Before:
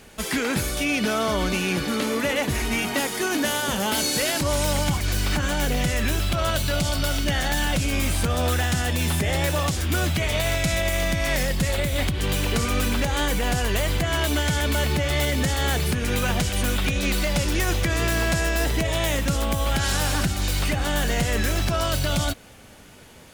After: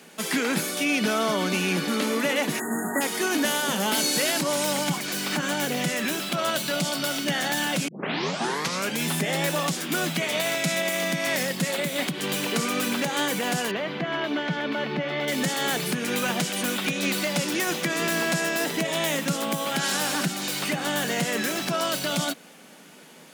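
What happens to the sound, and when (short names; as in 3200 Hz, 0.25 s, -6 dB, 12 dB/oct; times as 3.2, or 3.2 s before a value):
2.6–3.01 spectral delete 2000–6600 Hz
7.88 tape start 1.18 s
13.71–15.28 air absorption 290 m
whole clip: Chebyshev high-pass 160 Hz, order 5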